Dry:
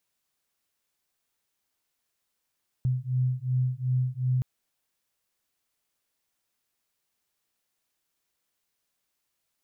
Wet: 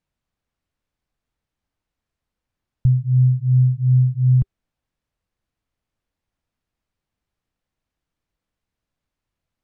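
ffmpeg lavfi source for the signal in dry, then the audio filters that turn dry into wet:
-f lavfi -i "aevalsrc='0.0447*(sin(2*PI*126*t)+sin(2*PI*128.7*t))':duration=1.57:sample_rate=44100"
-af "aemphasis=mode=reproduction:type=riaa,bandreject=frequency=390:width=12"

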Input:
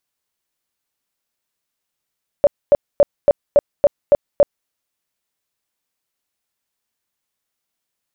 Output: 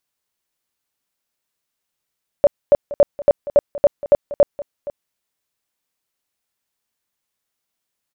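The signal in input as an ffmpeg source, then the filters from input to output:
-f lavfi -i "aevalsrc='0.501*sin(2*PI*576*mod(t,0.28))*lt(mod(t,0.28),17/576)':duration=2.24:sample_rate=44100"
-af "aecho=1:1:470:0.141"

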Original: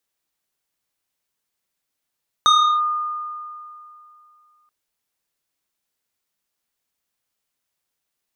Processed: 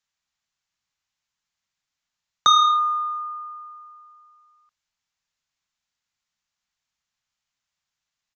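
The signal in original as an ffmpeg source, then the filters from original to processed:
-f lavfi -i "aevalsrc='0.335*pow(10,-3*t/2.7)*sin(2*PI*1220*t+1.2*clip(1-t/0.35,0,1)*sin(2*PI*2.03*1220*t))':duration=2.23:sample_rate=44100"
-filter_complex "[0:a]acrossover=split=240|670|1300[link_01][link_02][link_03][link_04];[link_02]aeval=exprs='sgn(val(0))*max(abs(val(0))-0.00376,0)':channel_layout=same[link_05];[link_01][link_05][link_03][link_04]amix=inputs=4:normalize=0,aresample=16000,aresample=44100"

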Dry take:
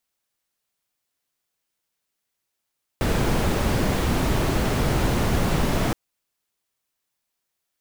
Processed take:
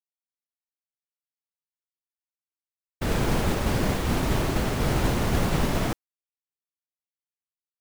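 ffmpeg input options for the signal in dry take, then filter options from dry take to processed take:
-f lavfi -i "anoisesrc=color=brown:amplitude=0.417:duration=2.92:sample_rate=44100:seed=1"
-af "agate=range=-33dB:threshold=-18dB:ratio=3:detection=peak"

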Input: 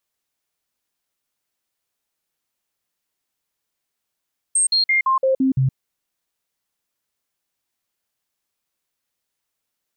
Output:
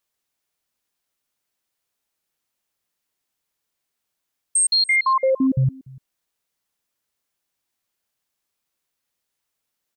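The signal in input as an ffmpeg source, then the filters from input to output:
-f lavfi -i "aevalsrc='0.2*clip(min(mod(t,0.17),0.12-mod(t,0.17))/0.005,0,1)*sin(2*PI*8460*pow(2,-floor(t/0.17)/1)*mod(t,0.17))':duration=1.19:sample_rate=44100"
-af "aecho=1:1:292:0.0708"

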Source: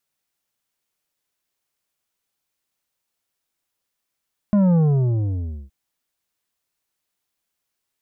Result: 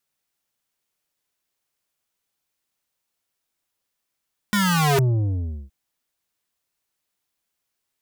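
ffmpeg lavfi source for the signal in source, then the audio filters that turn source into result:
-f lavfi -i "aevalsrc='0.2*clip((1.17-t)/0.95,0,1)*tanh(2.66*sin(2*PI*210*1.17/log(65/210)*(exp(log(65/210)*t/1.17)-1)))/tanh(2.66)':duration=1.17:sample_rate=44100"
-af "aeval=exprs='(mod(6.68*val(0)+1,2)-1)/6.68':channel_layout=same"

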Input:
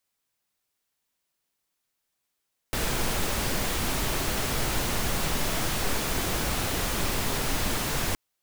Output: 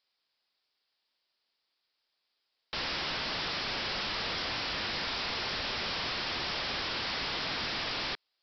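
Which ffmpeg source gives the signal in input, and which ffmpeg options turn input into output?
-f lavfi -i "anoisesrc=color=pink:amplitude=0.229:duration=5.42:sample_rate=44100:seed=1"
-af "bass=frequency=250:gain=-12,treble=frequency=4000:gain=14,aresample=11025,aeval=exprs='(mod(29.9*val(0)+1,2)-1)/29.9':channel_layout=same,aresample=44100"

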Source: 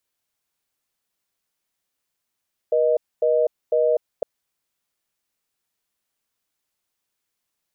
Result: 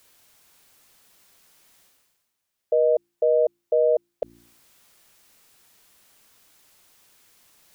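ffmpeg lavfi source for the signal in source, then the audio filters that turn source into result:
-f lavfi -i "aevalsrc='0.119*(sin(2*PI*480*t)+sin(2*PI*620*t))*clip(min(mod(t,0.5),0.25-mod(t,0.5))/0.005,0,1)':duration=1.51:sample_rate=44100"
-af "bandreject=frequency=57.78:width_type=h:width=4,bandreject=frequency=115.56:width_type=h:width=4,bandreject=frequency=173.34:width_type=h:width=4,bandreject=frequency=231.12:width_type=h:width=4,bandreject=frequency=288.9:width_type=h:width=4,bandreject=frequency=346.68:width_type=h:width=4,areverse,acompressor=mode=upward:threshold=-40dB:ratio=2.5,areverse"

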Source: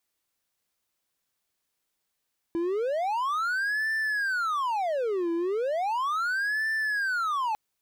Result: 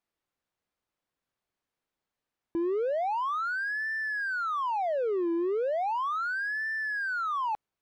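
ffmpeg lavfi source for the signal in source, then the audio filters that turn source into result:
-f lavfi -i "aevalsrc='0.0708*(1-4*abs(mod((1052.5*t-717.5/(2*PI*0.36)*sin(2*PI*0.36*t))+0.25,1)-0.5))':duration=5:sample_rate=44100"
-af "lowpass=frequency=1400:poles=1"

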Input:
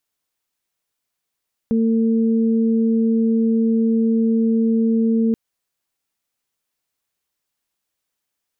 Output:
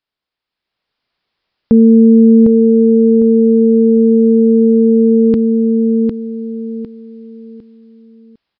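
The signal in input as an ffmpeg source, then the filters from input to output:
-f lavfi -i "aevalsrc='0.188*sin(2*PI*226*t)+0.0668*sin(2*PI*452*t)':duration=3.63:sample_rate=44100"
-filter_complex "[0:a]dynaudnorm=framelen=130:gausssize=13:maxgain=14dB,asplit=2[link_01][link_02];[link_02]aecho=0:1:754|1508|2262|3016:0.596|0.185|0.0572|0.0177[link_03];[link_01][link_03]amix=inputs=2:normalize=0,aresample=11025,aresample=44100"

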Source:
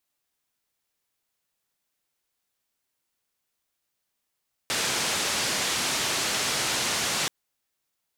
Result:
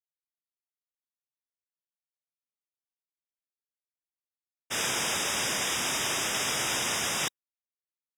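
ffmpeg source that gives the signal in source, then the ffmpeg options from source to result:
-f lavfi -i "anoisesrc=color=white:duration=2.58:sample_rate=44100:seed=1,highpass=frequency=97,lowpass=frequency=6900,volume=-17.3dB"
-af "agate=range=-33dB:threshold=-24dB:ratio=3:detection=peak,asuperstop=centerf=4300:order=20:qfactor=4.5"

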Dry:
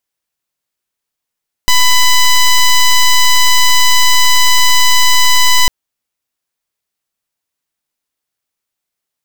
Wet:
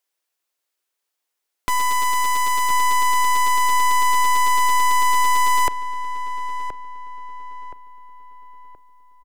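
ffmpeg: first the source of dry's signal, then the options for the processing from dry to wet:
-f lavfi -i "aevalsrc='0.447*(2*lt(mod(999*t,1),0.09)-1)':duration=4:sample_rate=44100"
-filter_complex "[0:a]highpass=frequency=320:width=0.5412,highpass=frequency=320:width=1.3066,aeval=exprs='0.251*(abs(mod(val(0)/0.251+3,4)-2)-1)':channel_layout=same,asplit=2[link_01][link_02];[link_02]adelay=1023,lowpass=frequency=1700:poles=1,volume=-9.5dB,asplit=2[link_03][link_04];[link_04]adelay=1023,lowpass=frequency=1700:poles=1,volume=0.45,asplit=2[link_05][link_06];[link_06]adelay=1023,lowpass=frequency=1700:poles=1,volume=0.45,asplit=2[link_07][link_08];[link_08]adelay=1023,lowpass=frequency=1700:poles=1,volume=0.45,asplit=2[link_09][link_10];[link_10]adelay=1023,lowpass=frequency=1700:poles=1,volume=0.45[link_11];[link_03][link_05][link_07][link_09][link_11]amix=inputs=5:normalize=0[link_12];[link_01][link_12]amix=inputs=2:normalize=0"

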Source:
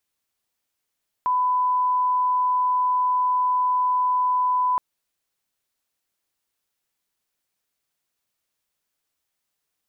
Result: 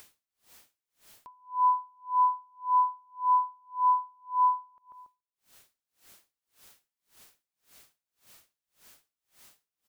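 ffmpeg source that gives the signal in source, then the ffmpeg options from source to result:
-f lavfi -i "sine=frequency=1000:duration=3.52:sample_rate=44100,volume=0.06dB"
-filter_complex "[0:a]acompressor=mode=upward:threshold=-33dB:ratio=2.5,asplit=2[link_01][link_02];[link_02]adelay=141,lowpass=frequency=1000:poles=1,volume=-18dB,asplit=2[link_03][link_04];[link_04]adelay=141,lowpass=frequency=1000:poles=1,volume=0.51,asplit=2[link_05][link_06];[link_06]adelay=141,lowpass=frequency=1000:poles=1,volume=0.51,asplit=2[link_07][link_08];[link_08]adelay=141,lowpass=frequency=1000:poles=1,volume=0.51[link_09];[link_01][link_03][link_05][link_07][link_09]amix=inputs=5:normalize=0,aeval=exprs='val(0)*pow(10,-40*(0.5-0.5*cos(2*PI*1.8*n/s))/20)':channel_layout=same"

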